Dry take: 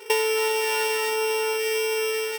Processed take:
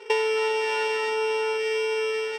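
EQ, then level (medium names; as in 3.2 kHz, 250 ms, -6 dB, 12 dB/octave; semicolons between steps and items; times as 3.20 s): distance through air 120 m; 0.0 dB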